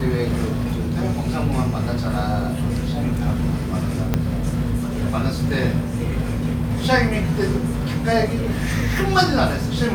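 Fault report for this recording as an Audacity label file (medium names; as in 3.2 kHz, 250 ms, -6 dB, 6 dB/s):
4.140000	4.140000	pop -6 dBFS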